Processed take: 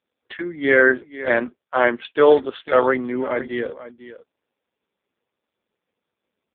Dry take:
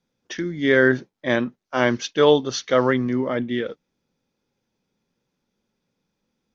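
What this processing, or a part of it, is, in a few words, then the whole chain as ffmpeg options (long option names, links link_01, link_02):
satellite phone: -af "highpass=380,lowpass=3300,aecho=1:1:497:0.188,volume=4.5dB" -ar 8000 -c:a libopencore_amrnb -b:a 5150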